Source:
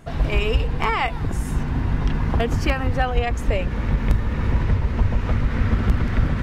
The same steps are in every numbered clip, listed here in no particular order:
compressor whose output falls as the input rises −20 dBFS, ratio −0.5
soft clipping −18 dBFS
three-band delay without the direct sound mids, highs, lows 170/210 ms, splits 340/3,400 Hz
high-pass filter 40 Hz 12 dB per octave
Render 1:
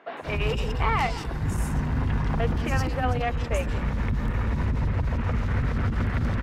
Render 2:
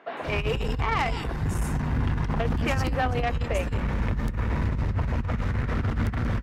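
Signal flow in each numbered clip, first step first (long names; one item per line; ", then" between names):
high-pass filter, then compressor whose output falls as the input rises, then soft clipping, then three-band delay without the direct sound
three-band delay without the direct sound, then compressor whose output falls as the input rises, then soft clipping, then high-pass filter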